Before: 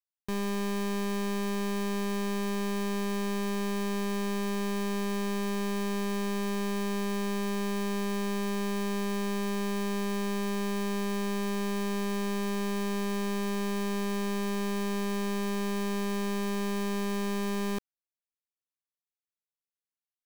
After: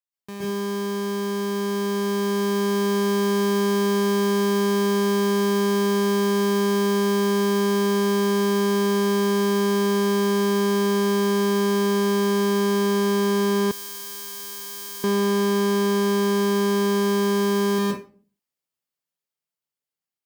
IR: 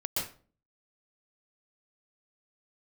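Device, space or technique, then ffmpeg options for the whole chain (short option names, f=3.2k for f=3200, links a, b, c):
far laptop microphone: -filter_complex "[1:a]atrim=start_sample=2205[a];[0:a][a]afir=irnorm=-1:irlink=0,highpass=110,dynaudnorm=f=490:g=9:m=6dB,asettb=1/sr,asplit=3[b][c][d];[b]atrim=end=13.714[e];[c]atrim=start=13.71:end=15.04,asetpts=PTS-STARTPTS,afade=t=in:d=0.004:c=qsin,afade=t=out:st=1.326:d=0.004:c=qsin,aderivative[f];[d]atrim=start=15.036[g];[e][f]acrossfade=d=0.004:c1=hsin:c2=qsin[h];[h][g]acrossfade=d=0.004:c1=qsin:c2=hsin,volume=-1.5dB"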